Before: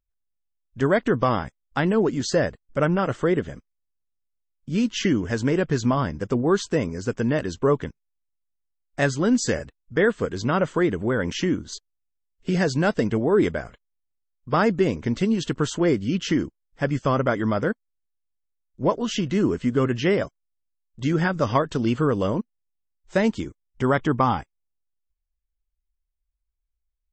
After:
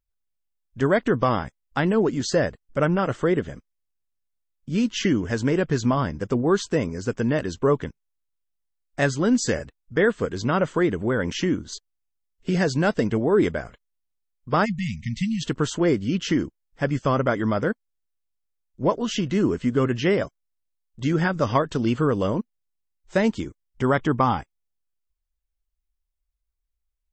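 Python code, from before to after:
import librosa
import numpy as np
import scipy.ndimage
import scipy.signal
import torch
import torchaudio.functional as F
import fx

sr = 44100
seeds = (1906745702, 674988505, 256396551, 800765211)

y = fx.brickwall_bandstop(x, sr, low_hz=230.0, high_hz=1800.0, at=(14.64, 15.41), fade=0.02)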